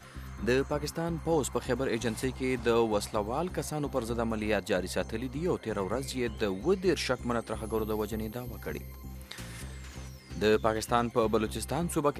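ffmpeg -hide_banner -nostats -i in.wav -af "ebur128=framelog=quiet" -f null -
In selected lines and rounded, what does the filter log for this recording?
Integrated loudness:
  I:         -31.0 LUFS
  Threshold: -41.5 LUFS
Loudness range:
  LRA:         3.5 LU
  Threshold: -51.8 LUFS
  LRA low:   -34.1 LUFS
  LRA high:  -30.6 LUFS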